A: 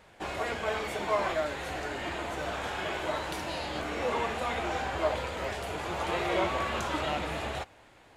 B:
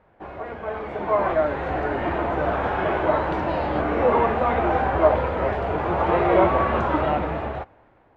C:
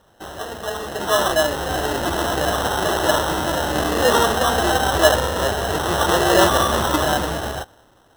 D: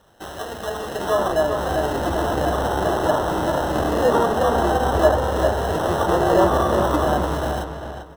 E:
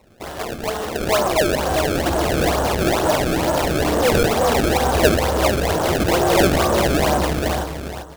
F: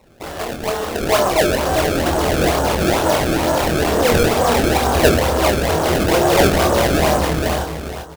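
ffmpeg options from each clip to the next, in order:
ffmpeg -i in.wav -af "dynaudnorm=framelen=260:gausssize=9:maxgain=13dB,lowpass=1300" out.wav
ffmpeg -i in.wav -af "highshelf=frequency=1700:width_type=q:width=1.5:gain=-6.5,acrusher=samples=19:mix=1:aa=0.000001,volume=2dB" out.wav
ffmpeg -i in.wav -filter_complex "[0:a]acrossover=split=1200[link_01][link_02];[link_02]acompressor=threshold=-33dB:ratio=6[link_03];[link_01][link_03]amix=inputs=2:normalize=0,asplit=2[link_04][link_05];[link_05]adelay=395,lowpass=frequency=3600:poles=1,volume=-6.5dB,asplit=2[link_06][link_07];[link_07]adelay=395,lowpass=frequency=3600:poles=1,volume=0.28,asplit=2[link_08][link_09];[link_09]adelay=395,lowpass=frequency=3600:poles=1,volume=0.28,asplit=2[link_10][link_11];[link_11]adelay=395,lowpass=frequency=3600:poles=1,volume=0.28[link_12];[link_04][link_06][link_08][link_10][link_12]amix=inputs=5:normalize=0" out.wav
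ffmpeg -i in.wav -filter_complex "[0:a]asplit=2[link_01][link_02];[link_02]aeval=exprs='0.126*(abs(mod(val(0)/0.126+3,4)-2)-1)':channel_layout=same,volume=-7.5dB[link_03];[link_01][link_03]amix=inputs=2:normalize=0,acrusher=samples=26:mix=1:aa=0.000001:lfo=1:lforange=41.6:lforate=2.2" out.wav
ffmpeg -i in.wav -filter_complex "[0:a]asplit=2[link_01][link_02];[link_02]adelay=25,volume=-5dB[link_03];[link_01][link_03]amix=inputs=2:normalize=0,volume=1dB" out.wav

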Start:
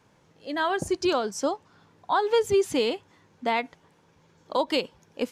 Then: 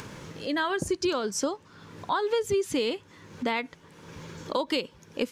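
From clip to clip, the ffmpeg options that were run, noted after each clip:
ffmpeg -i in.wav -af "acompressor=mode=upward:threshold=-35dB:ratio=2.5,equalizer=frequency=750:width=2.7:gain=-8.5,acompressor=threshold=-32dB:ratio=3,volume=6dB" out.wav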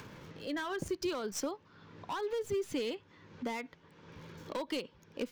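ffmpeg -i in.wav -filter_complex "[0:a]acrossover=split=380|5500[link_01][link_02][link_03];[link_02]asoftclip=type=hard:threshold=-27dB[link_04];[link_03]acrusher=bits=6:dc=4:mix=0:aa=0.000001[link_05];[link_01][link_04][link_05]amix=inputs=3:normalize=0,volume=-7.5dB" out.wav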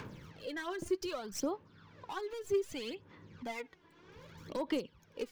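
ffmpeg -i in.wav -af "aphaser=in_gain=1:out_gain=1:delay=3:decay=0.63:speed=0.64:type=sinusoidal,volume=-4.5dB" out.wav

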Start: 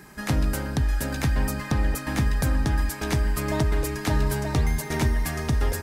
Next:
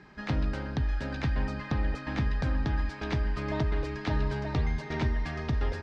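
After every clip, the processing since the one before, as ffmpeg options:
ffmpeg -i in.wav -af "lowpass=frequency=4500:width=0.5412,lowpass=frequency=4500:width=1.3066,volume=-5.5dB" out.wav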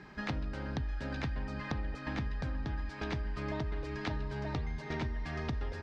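ffmpeg -i in.wav -af "acompressor=threshold=-35dB:ratio=6,volume=1.5dB" out.wav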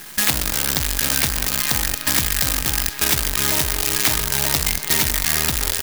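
ffmpeg -i in.wav -af "acrusher=bits=7:dc=4:mix=0:aa=0.000001,crystalizer=i=9.5:c=0,volume=7.5dB" out.wav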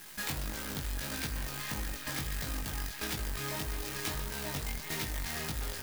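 ffmpeg -i in.wav -af "aeval=exprs='(mod(3.76*val(0)+1,2)-1)/3.76':channel_layout=same,flanger=delay=18.5:depth=3.3:speed=1.6,volume=-8.5dB" out.wav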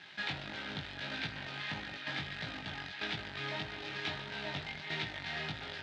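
ffmpeg -i in.wav -af "highpass=frequency=110:width=0.5412,highpass=frequency=110:width=1.3066,equalizer=frequency=130:width_type=q:width=4:gain=-7,equalizer=frequency=230:width_type=q:width=4:gain=-9,equalizer=frequency=330:width_type=q:width=4:gain=-5,equalizer=frequency=480:width_type=q:width=4:gain=-9,equalizer=frequency=1100:width_type=q:width=4:gain=-9,equalizer=frequency=3700:width_type=q:width=4:gain=4,lowpass=frequency=3700:width=0.5412,lowpass=frequency=3700:width=1.3066,volume=2.5dB" out.wav

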